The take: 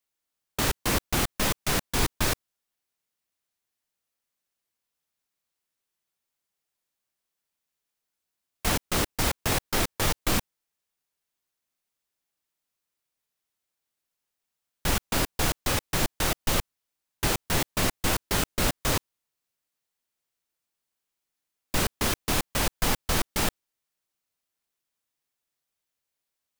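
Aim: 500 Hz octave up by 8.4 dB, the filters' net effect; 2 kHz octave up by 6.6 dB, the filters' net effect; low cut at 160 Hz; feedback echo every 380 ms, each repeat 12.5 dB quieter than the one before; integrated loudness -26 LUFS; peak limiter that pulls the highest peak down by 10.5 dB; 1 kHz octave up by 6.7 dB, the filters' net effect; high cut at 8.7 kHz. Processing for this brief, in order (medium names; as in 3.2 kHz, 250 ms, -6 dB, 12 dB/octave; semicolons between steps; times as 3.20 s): high-pass 160 Hz; low-pass 8.7 kHz; peaking EQ 500 Hz +9 dB; peaking EQ 1 kHz +4 dB; peaking EQ 2 kHz +6.5 dB; peak limiter -19 dBFS; feedback delay 380 ms, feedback 24%, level -12.5 dB; trim +4.5 dB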